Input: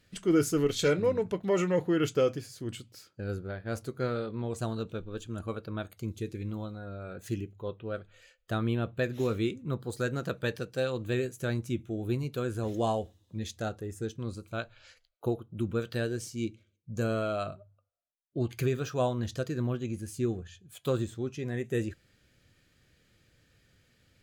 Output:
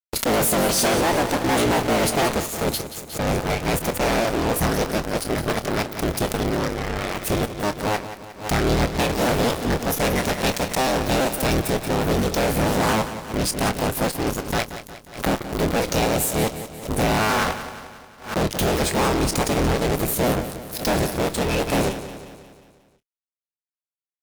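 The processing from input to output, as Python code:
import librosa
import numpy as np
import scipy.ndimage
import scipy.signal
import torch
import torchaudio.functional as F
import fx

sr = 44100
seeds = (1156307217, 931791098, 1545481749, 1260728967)

y = fx.cycle_switch(x, sr, every=3, mode='inverted')
y = fx.high_shelf(y, sr, hz=3800.0, db=8.0)
y = fx.formant_shift(y, sr, semitones=6)
y = fx.fuzz(y, sr, gain_db=41.0, gate_db=-41.0)
y = fx.doubler(y, sr, ms=26.0, db=-13.0)
y = fx.echo_feedback(y, sr, ms=179, feedback_pct=54, wet_db=-12)
y = fx.pre_swell(y, sr, db_per_s=140.0)
y = F.gain(torch.from_numpy(y), -5.0).numpy()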